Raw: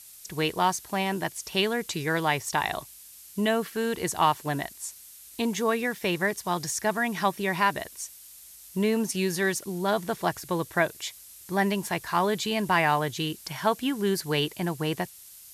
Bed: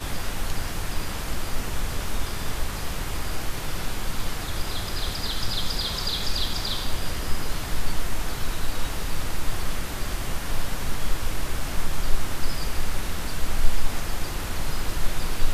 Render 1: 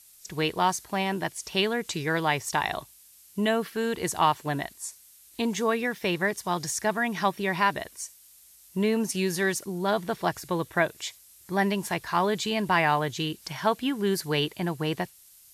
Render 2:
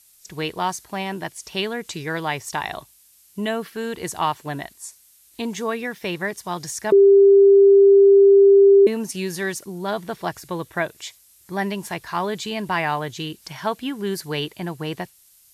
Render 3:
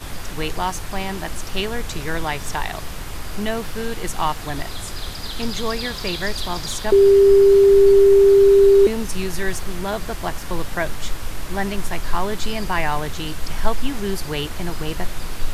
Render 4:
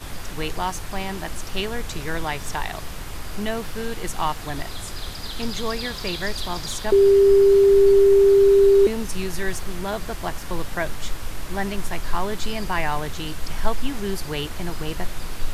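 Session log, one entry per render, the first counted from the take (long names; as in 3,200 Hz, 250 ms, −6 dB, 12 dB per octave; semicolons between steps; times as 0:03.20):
noise reduction from a noise print 6 dB
0:06.92–0:08.87: beep over 396 Hz −8 dBFS
mix in bed −1.5 dB
level −2.5 dB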